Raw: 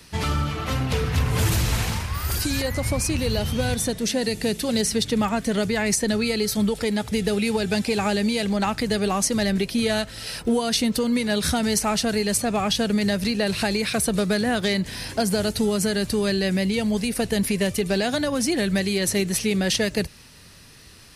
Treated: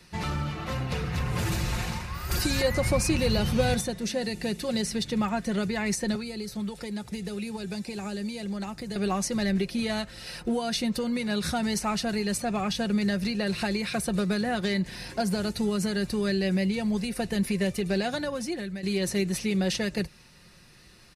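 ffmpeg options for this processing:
ffmpeg -i in.wav -filter_complex "[0:a]asettb=1/sr,asplit=3[link_01][link_02][link_03];[link_01]atrim=end=2.314[link_04];[link_02]atrim=start=2.31:end=3.81,asetpts=PTS-STARTPTS,afade=type=in:duration=0.004:curve=qsin,afade=type=out:start_time=1.496:duration=0.004:curve=qsin,acontrast=46[link_05];[link_03]atrim=start=3.806[link_06];[link_04][link_05]acrossfade=duration=0.004:curve1=hsin:curve2=qsin[link_07];[link_07][link_06]acrossfade=duration=0.004:curve1=qsin:curve2=hsin,asettb=1/sr,asplit=3[link_08][link_09][link_10];[link_08]atrim=end=6.154[link_11];[link_09]atrim=start=6.15:end=8.96,asetpts=PTS-STARTPTS,afade=type=in:duration=0.004:curve=qsin,afade=type=out:start_time=2.806:duration=0.004:curve=qsin,acrossover=split=150|810|4800[link_12][link_13][link_14][link_15];[link_12]acompressor=threshold=-42dB:ratio=3[link_16];[link_13]acompressor=threshold=-30dB:ratio=3[link_17];[link_14]acompressor=threshold=-41dB:ratio=3[link_18];[link_15]acompressor=threshold=-37dB:ratio=3[link_19];[link_16][link_17][link_18][link_19]amix=inputs=4:normalize=0[link_20];[link_10]atrim=start=8.956[link_21];[link_11][link_20]acrossfade=duration=0.004:curve1=hsin:curve2=qsin[link_22];[link_22][link_21]acrossfade=duration=0.004:curve1=qsin:curve2=hsin,asplit=2[link_23][link_24];[link_23]atrim=end=18.83,asetpts=PTS-STARTPTS,afade=type=out:start_time=18.15:duration=0.68:silence=0.211349[link_25];[link_24]atrim=start=18.83,asetpts=PTS-STARTPTS,afade=type=in:duration=0.004:curve=hsin:silence=0.211349[link_26];[link_25][link_26]concat=n=2:v=0:a=1,highshelf=frequency=6700:gain=-8,bandreject=frequency=3200:width=15,aecho=1:1:5.6:0.45,volume=-5.5dB" out.wav

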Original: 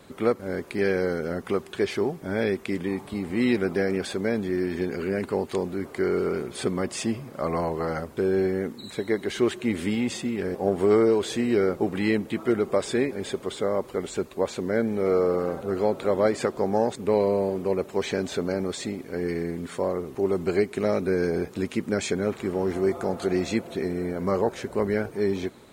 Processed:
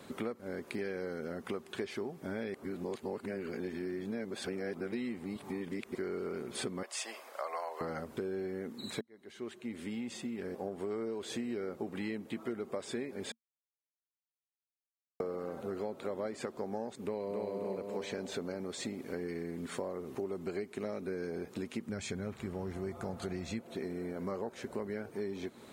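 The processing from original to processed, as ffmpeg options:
ffmpeg -i in.wav -filter_complex "[0:a]asettb=1/sr,asplit=3[link_01][link_02][link_03];[link_01]atrim=end=6.834[link_04];[link_02]atrim=start=6.83:end=7.81,asetpts=PTS-STARTPTS,afade=type=in:duration=0.004:curve=qsin,afade=type=out:start_time=0.976:duration=0.004:curve=qsin,highpass=frequency=590:width=0.5412,highpass=frequency=590:width=1.3066[link_05];[link_03]atrim=start=7.806[link_06];[link_04][link_05]acrossfade=duration=0.004:curve1=hsin:curve2=qsin[link_07];[link_07][link_06]acrossfade=duration=0.004:curve1=qsin:curve2=hsin,asplit=2[link_08][link_09];[link_09]afade=type=in:start_time=17.02:duration=0.01,afade=type=out:start_time=17.51:duration=0.01,aecho=0:1:270|540|810|1080|1350|1620:0.944061|0.424827|0.191172|0.0860275|0.0387124|0.0174206[link_10];[link_08][link_10]amix=inputs=2:normalize=0,asplit=3[link_11][link_12][link_13];[link_11]afade=type=out:start_time=21.87:duration=0.02[link_14];[link_12]asubboost=boost=5:cutoff=130,afade=type=in:start_time=21.87:duration=0.02,afade=type=out:start_time=23.58:duration=0.02[link_15];[link_13]afade=type=in:start_time=23.58:duration=0.02[link_16];[link_14][link_15][link_16]amix=inputs=3:normalize=0,asplit=6[link_17][link_18][link_19][link_20][link_21][link_22];[link_17]atrim=end=2.542[link_23];[link_18]atrim=start=2.538:end=5.952,asetpts=PTS-STARTPTS,areverse[link_24];[link_19]atrim=start=5.948:end=9.01,asetpts=PTS-STARTPTS,afade=type=out:start_time=3.058:duration=0.004:curve=hsin[link_25];[link_20]atrim=start=9.01:end=13.32,asetpts=PTS-STARTPTS,afade=type=in:duration=3.21,afade=type=out:start_time=4.306:duration=0.004:curve=hsin[link_26];[link_21]atrim=start=13.32:end=15.2,asetpts=PTS-STARTPTS,volume=0[link_27];[link_22]atrim=start=15.2,asetpts=PTS-STARTPTS,afade=type=in:duration=0.004:curve=hsin[link_28];[link_23][link_24]acrossfade=duration=0.004:curve1=hsin:curve2=hsin[link_29];[link_25][link_26][link_27][link_28]concat=n=4:v=0:a=1[link_30];[link_29][link_30]acrossfade=duration=0.004:curve1=hsin:curve2=hsin,equalizer=frequency=230:width_type=o:width=0.21:gain=5,acompressor=threshold=-34dB:ratio=6,highpass=frequency=120:poles=1,volume=-1dB" out.wav

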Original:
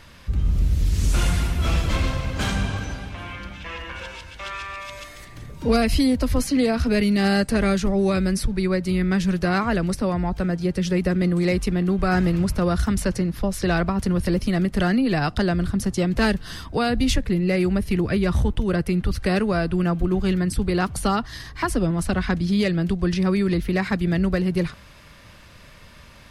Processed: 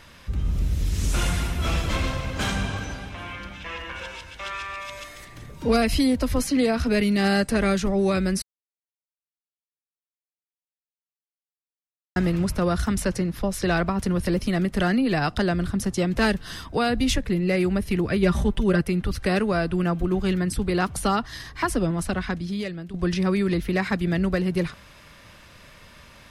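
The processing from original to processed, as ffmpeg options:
ffmpeg -i in.wav -filter_complex "[0:a]asettb=1/sr,asplit=3[link_01][link_02][link_03];[link_01]atrim=end=18.224[link_04];[link_02]atrim=start=18.22:end=18.81,asetpts=PTS-STARTPTS,afade=type=in:duration=0.004:curve=qsin,afade=type=out:start_time=0.586:duration=0.004:curve=qsin,aecho=1:1:5.1:0.69,atrim=end_sample=26019[link_05];[link_03]atrim=start=18.806[link_06];[link_04][link_05]acrossfade=duration=0.004:curve1=hsin:curve2=qsin[link_07];[link_07][link_06]acrossfade=duration=0.004:curve1=qsin:curve2=hsin,asplit=4[link_08][link_09][link_10][link_11];[link_08]atrim=end=8.42,asetpts=PTS-STARTPTS,afade=type=out:start_time=8.416:duration=0.004:curve=hsin[link_12];[link_09]atrim=start=8.42:end=12.16,asetpts=PTS-STARTPTS,volume=0[link_13];[link_10]atrim=start=12.16:end=22.94,asetpts=PTS-STARTPTS,afade=type=in:duration=0.004:curve=hsin,afade=type=out:start_time=9.72:duration=1.06:silence=0.188365[link_14];[link_11]atrim=start=22.94,asetpts=PTS-STARTPTS,afade=type=in:duration=0.004:curve=hsin:silence=0.188365[link_15];[link_12][link_13][link_14][link_15]concat=n=4:v=0:a=1,lowshelf=frequency=190:gain=-4.5,bandreject=frequency=4500:width=21" out.wav

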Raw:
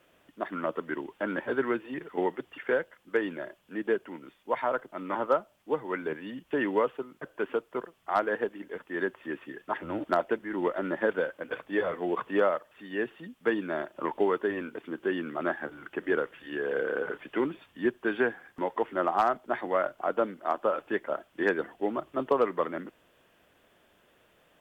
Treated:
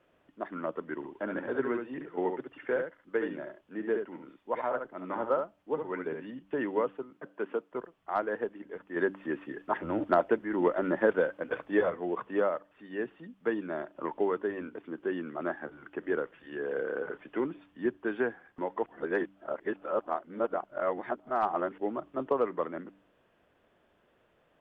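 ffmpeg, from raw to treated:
ffmpeg -i in.wav -filter_complex "[0:a]asettb=1/sr,asplit=3[link_01][link_02][link_03];[link_01]atrim=end=0.944[link_04];[link_02]atrim=start=0.94:end=6.26,asetpts=PTS-STARTPTS,afade=type=in:duration=0.004:curve=qsin,afade=type=out:start_time=5.316:duration=0.004:curve=qsin,aecho=1:1:70:0.501,atrim=end_sample=234612[link_05];[link_03]atrim=start=6.256[link_06];[link_04][link_05]acrossfade=duration=0.004:curve1=hsin:curve2=qsin[link_07];[link_07][link_06]acrossfade=duration=0.004:curve1=qsin:curve2=hsin,asettb=1/sr,asplit=3[link_08][link_09][link_10];[link_08]atrim=end=7.104[link_11];[link_09]atrim=start=7.1:end=7.72,asetpts=PTS-STARTPTS,afade=type=in:duration=0.004:curve=qsin,afade=type=out:start_time=0.616:duration=0.004:curve=qsin,highpass=frequency=150:width=0.5412,highpass=frequency=150:width=1.3066[link_12];[link_10]atrim=start=7.716[link_13];[link_11][link_12]acrossfade=duration=0.004:curve1=hsin:curve2=qsin[link_14];[link_14][link_13]acrossfade=duration=0.004:curve1=qsin:curve2=hsin,asettb=1/sr,asplit=3[link_15][link_16][link_17];[link_15]atrim=end=8.964[link_18];[link_16]atrim=start=8.96:end=11.9,asetpts=PTS-STARTPTS,afade=type=in:duration=0.004:curve=qsin,afade=type=out:start_time=2.936:duration=0.004:curve=qsin,acontrast=34[link_19];[link_17]atrim=start=11.896[link_20];[link_18][link_19]acrossfade=duration=0.004:curve1=hsin:curve2=qsin[link_21];[link_21][link_20]acrossfade=duration=0.004:curve1=qsin:curve2=hsin,asplit=3[link_22][link_23][link_24];[link_22]atrim=end=18.862[link_25];[link_23]atrim=start=18.858:end=21.782,asetpts=PTS-STARTPTS,areverse[link_26];[link_24]atrim=start=21.778[link_27];[link_25][link_26]acrossfade=duration=0.004:curve1=hsin:curve2=hsin[link_28];[link_28][link_27]acrossfade=duration=0.004:curve1=hsin:curve2=hsin,lowpass=frequency=1500:poles=1,bandreject=frequency=97.07:width_type=h:width=4,bandreject=frequency=194.14:width_type=h:width=4,bandreject=frequency=291.21:width_type=h:width=4,volume=-2.5dB" out.wav

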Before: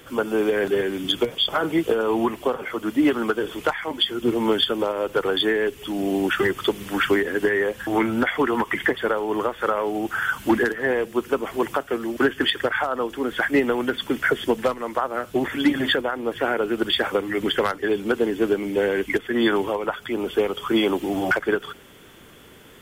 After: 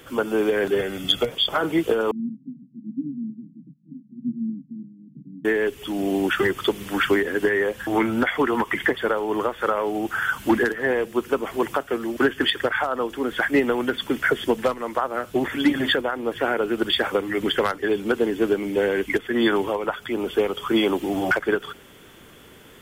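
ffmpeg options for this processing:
ffmpeg -i in.wav -filter_complex "[0:a]asettb=1/sr,asplit=3[link_01][link_02][link_03];[link_01]atrim=end=0.794[link_04];[link_02]atrim=start=0.79:end=1.29,asetpts=PTS-STARTPTS,afade=type=in:duration=0.004:curve=qsin,afade=type=out:start_time=0.496:duration=0.004:curve=qsin,aecho=1:1:1.5:0.57,atrim=end_sample=22050[link_05];[link_03]atrim=start=1.286[link_06];[link_04][link_05]acrossfade=duration=0.004:curve1=hsin:curve2=qsin[link_07];[link_07][link_06]acrossfade=duration=0.004:curve1=qsin:curve2=hsin,asettb=1/sr,asplit=3[link_08][link_09][link_10];[link_08]atrim=end=2.114[link_11];[link_09]atrim=start=2.11:end=5.45,asetpts=PTS-STARTPTS,afade=type=in:duration=0.004:curve=qsin,afade=type=out:start_time=3.336:duration=0.004:curve=qsin,asuperpass=centerf=190:order=12:qfactor=1.4[link_12];[link_10]atrim=start=5.446[link_13];[link_11][link_12]acrossfade=duration=0.004:curve1=hsin:curve2=qsin[link_14];[link_14][link_13]acrossfade=duration=0.004:curve1=qsin:curve2=hsin" out.wav

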